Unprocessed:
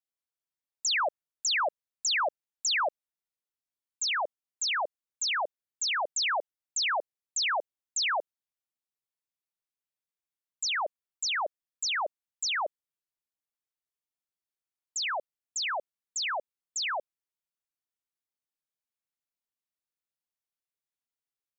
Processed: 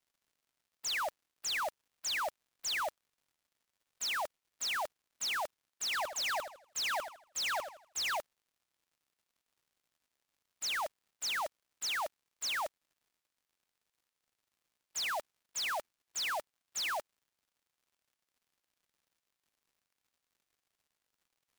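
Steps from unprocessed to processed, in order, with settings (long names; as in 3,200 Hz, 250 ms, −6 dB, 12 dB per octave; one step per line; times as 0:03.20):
spectral envelope flattened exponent 0.3
mid-hump overdrive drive 17 dB, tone 5,600 Hz, clips at −14 dBFS
brickwall limiter −26 dBFS, peak gain reduction 10 dB
surface crackle 160 per second −60 dBFS
0:05.84–0:08.17: feedback echo with a swinging delay time 81 ms, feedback 33%, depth 117 cents, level −9 dB
level −4.5 dB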